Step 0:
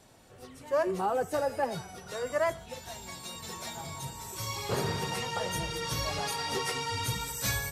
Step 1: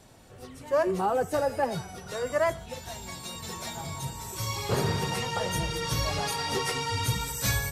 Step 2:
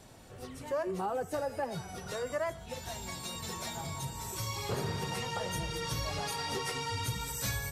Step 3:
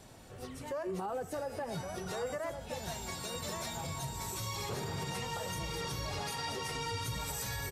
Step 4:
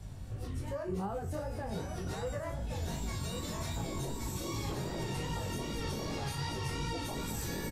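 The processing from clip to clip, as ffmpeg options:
-af "lowshelf=f=180:g=5,volume=2.5dB"
-af "acompressor=threshold=-37dB:ratio=2"
-af "alimiter=level_in=5.5dB:limit=-24dB:level=0:latency=1:release=60,volume=-5.5dB,aecho=1:1:1118:0.422"
-filter_complex "[0:a]acrossover=split=140[a][b];[a]aeval=exprs='0.0224*sin(PI/2*6.31*val(0)/0.0224)':c=same[c];[c][b]amix=inputs=2:normalize=0,flanger=delay=17.5:depth=5.7:speed=2.6,asplit=2[d][e];[e]adelay=36,volume=-9dB[f];[d][f]amix=inputs=2:normalize=0"

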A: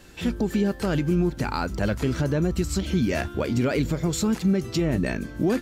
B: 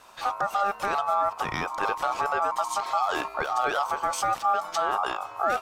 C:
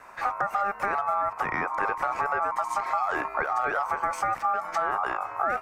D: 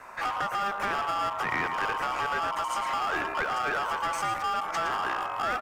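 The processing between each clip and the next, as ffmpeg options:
-af "aeval=exprs='val(0)*sin(2*PI*1000*n/s)':c=same"
-filter_complex "[0:a]highshelf=f=2.6k:t=q:w=3:g=-8,acrossover=split=200|1900[a][b][c];[a]acompressor=threshold=-48dB:ratio=4[d];[b]acompressor=threshold=-28dB:ratio=4[e];[c]acompressor=threshold=-41dB:ratio=4[f];[d][e][f]amix=inputs=3:normalize=0,volume=3dB"
-filter_complex "[0:a]aecho=1:1:113:0.316,acrossover=split=1600[a][b];[a]asoftclip=type=hard:threshold=-31.5dB[c];[c][b]amix=inputs=2:normalize=0,volume=2dB"

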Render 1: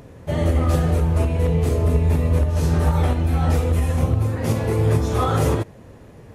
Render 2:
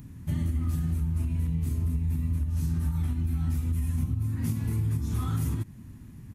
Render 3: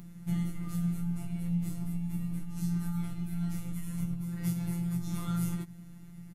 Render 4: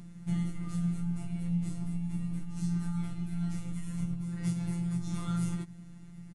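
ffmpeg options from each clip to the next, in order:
-af "firequalizer=gain_entry='entry(250,0);entry(490,-28);entry(950,-13);entry(2100,-9);entry(3100,-9);entry(13000,4)':delay=0.05:min_phase=1,acompressor=threshold=-25dB:ratio=6"
-filter_complex "[0:a]afftfilt=real='hypot(re,im)*cos(PI*b)':imag='0':win_size=1024:overlap=0.75,asplit=2[a][b];[b]adelay=16,volume=-3.5dB[c];[a][c]amix=inputs=2:normalize=0,volume=1dB"
-af "aresample=22050,aresample=44100"

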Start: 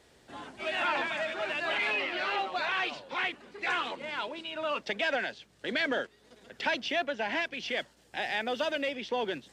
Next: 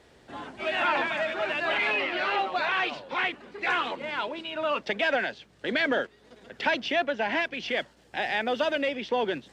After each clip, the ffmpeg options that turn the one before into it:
-af "highshelf=f=4.9k:g=-9.5,volume=5dB"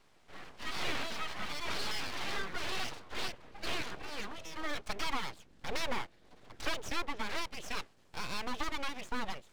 -filter_complex "[0:a]acrossover=split=190|640[a][b][c];[a]dynaudnorm=f=480:g=9:m=11.5dB[d];[d][b][c]amix=inputs=3:normalize=0,aeval=exprs='abs(val(0))':c=same,volume=-7dB"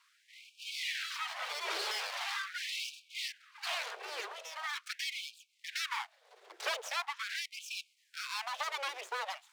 -af "afftfilt=real='re*gte(b*sr/1024,340*pow(2300/340,0.5+0.5*sin(2*PI*0.42*pts/sr)))':imag='im*gte(b*sr/1024,340*pow(2300/340,0.5+0.5*sin(2*PI*0.42*pts/sr)))':win_size=1024:overlap=0.75,volume=2dB"

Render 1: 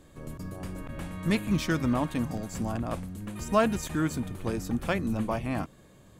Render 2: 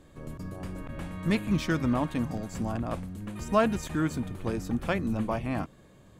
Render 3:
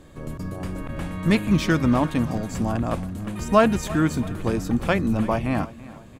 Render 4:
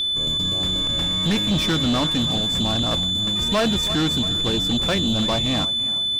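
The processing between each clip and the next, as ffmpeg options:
-af "highshelf=f=6k:g=-6.5"
-af "aecho=1:1:334|668|1002|1336:0.119|0.0535|0.0241|0.0108,volume=7dB"
-af "aeval=exprs='val(0)+0.0708*sin(2*PI*3500*n/s)':c=same,asoftclip=type=tanh:threshold=-20.5dB,volume=4dB"

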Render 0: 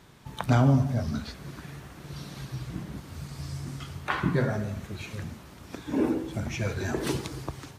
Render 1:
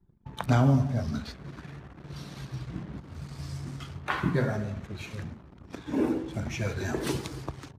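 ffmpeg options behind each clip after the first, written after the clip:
-af "anlmdn=0.0251,volume=-1dB"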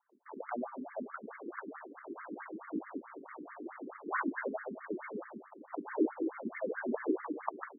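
-af "acompressor=threshold=-33dB:ratio=6,afftfilt=real='re*between(b*sr/1024,300*pow(1600/300,0.5+0.5*sin(2*PI*4.6*pts/sr))/1.41,300*pow(1600/300,0.5+0.5*sin(2*PI*4.6*pts/sr))*1.41)':imag='im*between(b*sr/1024,300*pow(1600/300,0.5+0.5*sin(2*PI*4.6*pts/sr))/1.41,300*pow(1600/300,0.5+0.5*sin(2*PI*4.6*pts/sr))*1.41)':win_size=1024:overlap=0.75,volume=9.5dB"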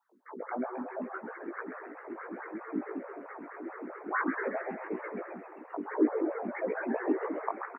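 -filter_complex "[0:a]flanger=delay=15:depth=5.6:speed=3,asplit=2[a][b];[b]asplit=6[c][d][e][f][g][h];[c]adelay=132,afreqshift=130,volume=-9dB[i];[d]adelay=264,afreqshift=260,volume=-14.2dB[j];[e]adelay=396,afreqshift=390,volume=-19.4dB[k];[f]adelay=528,afreqshift=520,volume=-24.6dB[l];[g]adelay=660,afreqshift=650,volume=-29.8dB[m];[h]adelay=792,afreqshift=780,volume=-35dB[n];[i][j][k][l][m][n]amix=inputs=6:normalize=0[o];[a][o]amix=inputs=2:normalize=0,volume=6dB"

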